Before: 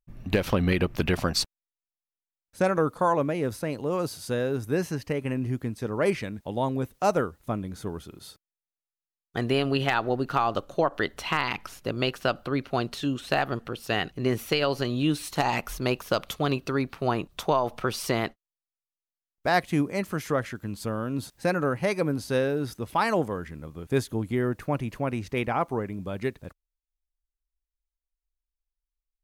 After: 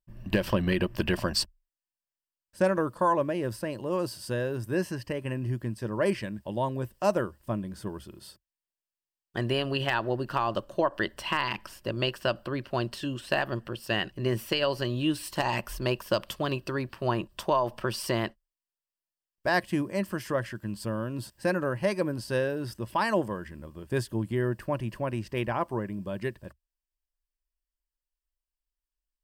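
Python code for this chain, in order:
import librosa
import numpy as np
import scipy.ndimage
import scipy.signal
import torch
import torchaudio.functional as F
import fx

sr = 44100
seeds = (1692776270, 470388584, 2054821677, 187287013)

y = fx.ripple_eq(x, sr, per_octave=1.3, db=8)
y = F.gain(torch.from_numpy(y), -3.0).numpy()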